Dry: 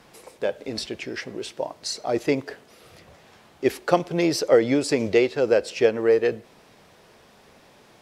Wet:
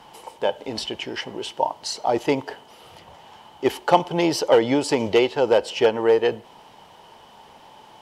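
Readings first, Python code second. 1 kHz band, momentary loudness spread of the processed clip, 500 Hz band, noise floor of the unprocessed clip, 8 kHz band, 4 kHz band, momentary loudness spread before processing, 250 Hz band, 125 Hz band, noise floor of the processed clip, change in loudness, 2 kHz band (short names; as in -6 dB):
+8.0 dB, 12 LU, +1.0 dB, -54 dBFS, 0.0 dB, +4.5 dB, 13 LU, +0.5 dB, 0.0 dB, -49 dBFS, +1.5 dB, +0.5 dB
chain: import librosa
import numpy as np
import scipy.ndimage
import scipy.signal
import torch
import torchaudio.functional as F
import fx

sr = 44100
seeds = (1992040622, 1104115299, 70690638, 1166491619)

y = np.clip(10.0 ** (11.0 / 20.0) * x, -1.0, 1.0) / 10.0 ** (11.0 / 20.0)
y = fx.small_body(y, sr, hz=(890.0, 3000.0), ring_ms=20, db=16)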